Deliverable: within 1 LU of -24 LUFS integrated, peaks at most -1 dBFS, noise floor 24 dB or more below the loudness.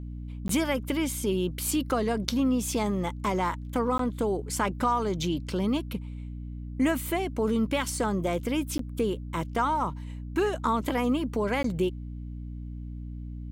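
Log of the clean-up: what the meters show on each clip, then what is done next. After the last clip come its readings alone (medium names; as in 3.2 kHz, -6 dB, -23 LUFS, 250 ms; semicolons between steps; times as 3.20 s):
dropouts 4; longest dropout 13 ms; hum 60 Hz; highest harmonic 300 Hz; hum level -35 dBFS; loudness -28.5 LUFS; peak level -8.0 dBFS; loudness target -24.0 LUFS
-> interpolate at 0.48/3.98/8.78/11.63 s, 13 ms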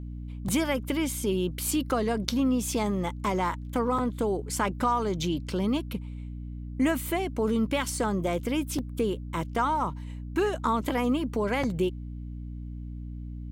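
dropouts 0; hum 60 Hz; highest harmonic 300 Hz; hum level -35 dBFS
-> hum notches 60/120/180/240/300 Hz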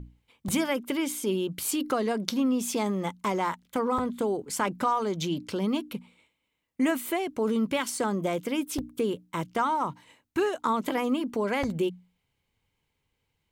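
hum not found; loudness -29.0 LUFS; peak level -8.0 dBFS; loudness target -24.0 LUFS
-> trim +5 dB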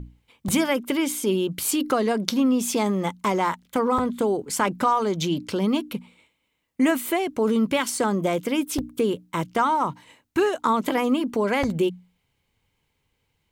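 loudness -24.0 LUFS; peak level -3.0 dBFS; noise floor -74 dBFS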